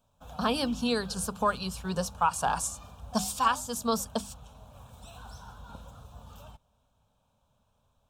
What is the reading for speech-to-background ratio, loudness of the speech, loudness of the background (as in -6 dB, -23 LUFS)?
17.5 dB, -30.0 LUFS, -47.5 LUFS